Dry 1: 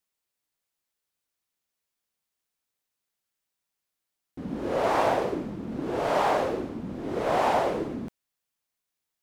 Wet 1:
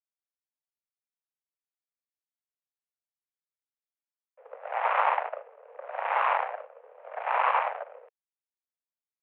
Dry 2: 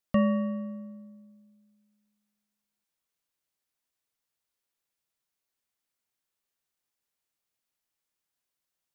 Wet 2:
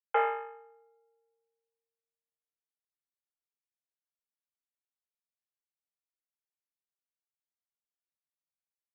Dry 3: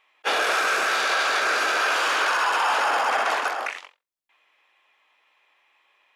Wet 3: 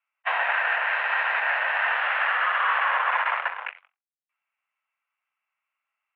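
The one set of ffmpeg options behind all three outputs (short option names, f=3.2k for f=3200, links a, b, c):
-af "aeval=exprs='0.282*(cos(1*acos(clip(val(0)/0.282,-1,1)))-cos(1*PI/2))+0.0398*(cos(2*acos(clip(val(0)/0.282,-1,1)))-cos(2*PI/2))+0.0355*(cos(7*acos(clip(val(0)/0.282,-1,1)))-cos(7*PI/2))+0.00316*(cos(8*acos(clip(val(0)/0.282,-1,1)))-cos(8*PI/2))':c=same,highpass=f=240:t=q:w=0.5412,highpass=f=240:t=q:w=1.307,lowpass=f=2.4k:t=q:w=0.5176,lowpass=f=2.4k:t=q:w=0.7071,lowpass=f=2.4k:t=q:w=1.932,afreqshift=250"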